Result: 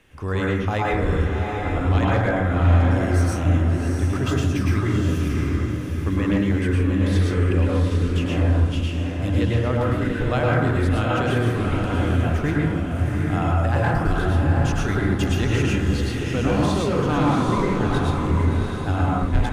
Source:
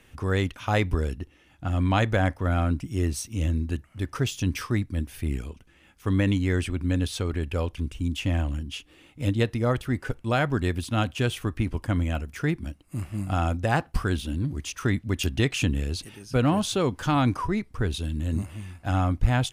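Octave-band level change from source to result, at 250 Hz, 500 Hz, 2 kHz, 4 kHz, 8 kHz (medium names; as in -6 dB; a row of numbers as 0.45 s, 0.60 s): +5.5 dB, +6.0 dB, +4.5 dB, +0.5 dB, -1.0 dB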